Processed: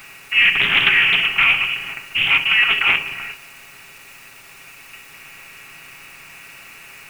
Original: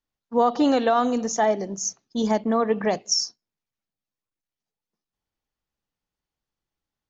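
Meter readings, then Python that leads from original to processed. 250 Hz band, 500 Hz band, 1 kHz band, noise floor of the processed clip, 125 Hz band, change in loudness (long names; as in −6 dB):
−16.5 dB, −17.0 dB, −4.0 dB, −43 dBFS, +1.0 dB, +8.5 dB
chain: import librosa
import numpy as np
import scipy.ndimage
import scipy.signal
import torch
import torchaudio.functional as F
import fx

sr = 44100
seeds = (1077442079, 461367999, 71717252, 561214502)

p1 = fx.bin_compress(x, sr, power=0.4)
p2 = scipy.signal.sosfilt(scipy.signal.butter(2, 180.0, 'highpass', fs=sr, output='sos'), p1)
p3 = fx.tilt_eq(p2, sr, slope=2.0)
p4 = fx.freq_invert(p3, sr, carrier_hz=3100)
p5 = fx.quant_dither(p4, sr, seeds[0], bits=6, dither='triangular')
p6 = p4 + F.gain(torch.from_numpy(p5), -11.0).numpy()
p7 = fx.peak_eq(p6, sr, hz=250.0, db=-4.0, octaves=0.56)
p8 = p7 + 0.55 * np.pad(p7, (int(7.3 * sr / 1000.0), 0))[:len(p7)]
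y = fx.doppler_dist(p8, sr, depth_ms=0.32)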